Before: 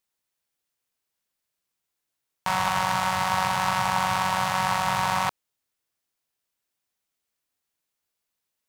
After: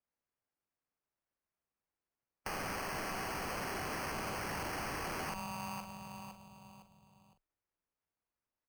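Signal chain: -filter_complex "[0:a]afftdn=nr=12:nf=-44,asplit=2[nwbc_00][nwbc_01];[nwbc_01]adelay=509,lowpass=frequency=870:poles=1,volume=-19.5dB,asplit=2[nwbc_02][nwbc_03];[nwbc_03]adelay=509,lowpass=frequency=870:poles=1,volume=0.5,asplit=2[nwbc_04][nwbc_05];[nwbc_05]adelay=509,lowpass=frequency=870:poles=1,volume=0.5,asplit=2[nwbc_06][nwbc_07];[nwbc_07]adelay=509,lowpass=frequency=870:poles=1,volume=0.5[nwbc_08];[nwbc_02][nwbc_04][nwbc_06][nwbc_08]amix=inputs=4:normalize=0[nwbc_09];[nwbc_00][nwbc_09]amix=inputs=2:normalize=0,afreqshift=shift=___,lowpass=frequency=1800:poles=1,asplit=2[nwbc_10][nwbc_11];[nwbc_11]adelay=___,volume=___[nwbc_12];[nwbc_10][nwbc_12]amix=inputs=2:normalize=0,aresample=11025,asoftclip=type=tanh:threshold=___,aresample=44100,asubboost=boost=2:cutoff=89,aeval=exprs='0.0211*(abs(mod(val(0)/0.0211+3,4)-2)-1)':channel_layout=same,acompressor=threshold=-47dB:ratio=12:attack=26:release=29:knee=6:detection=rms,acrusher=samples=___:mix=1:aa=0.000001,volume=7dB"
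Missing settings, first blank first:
17, 44, -9dB, -24dB, 12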